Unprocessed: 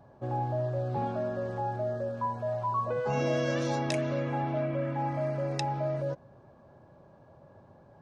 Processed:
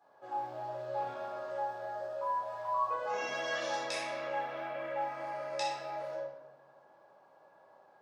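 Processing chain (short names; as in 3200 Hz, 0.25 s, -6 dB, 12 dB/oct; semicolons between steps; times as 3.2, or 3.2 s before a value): HPF 730 Hz 12 dB/oct; short-mantissa float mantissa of 6-bit; shoebox room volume 450 m³, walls mixed, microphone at 4 m; gain -9 dB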